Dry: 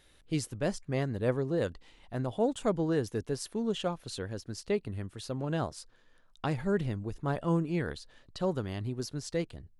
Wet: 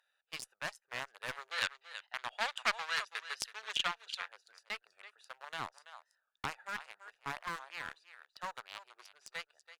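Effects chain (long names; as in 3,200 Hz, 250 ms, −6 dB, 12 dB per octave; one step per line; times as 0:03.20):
adaptive Wiener filter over 41 samples
single-tap delay 332 ms −14.5 dB
wave folding −21.5 dBFS
inverse Chebyshev high-pass filter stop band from 290 Hz, stop band 60 dB
asymmetric clip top −43 dBFS
0:01.51–0:04.29: parametric band 3,300 Hz +11.5 dB 2.5 octaves
wow of a warped record 45 rpm, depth 100 cents
level +5.5 dB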